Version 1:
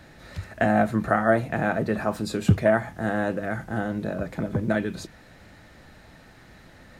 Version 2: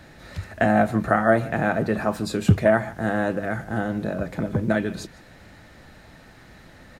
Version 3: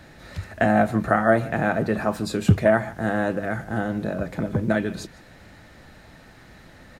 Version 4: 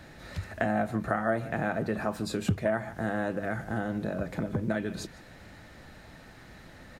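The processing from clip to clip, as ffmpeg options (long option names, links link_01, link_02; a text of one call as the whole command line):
ffmpeg -i in.wav -filter_complex "[0:a]asplit=2[link_01][link_02];[link_02]adelay=151.6,volume=-19dB,highshelf=frequency=4000:gain=-3.41[link_03];[link_01][link_03]amix=inputs=2:normalize=0,volume=2dB" out.wav
ffmpeg -i in.wav -af anull out.wav
ffmpeg -i in.wav -af "acompressor=threshold=-28dB:ratio=2,volume=-2dB" out.wav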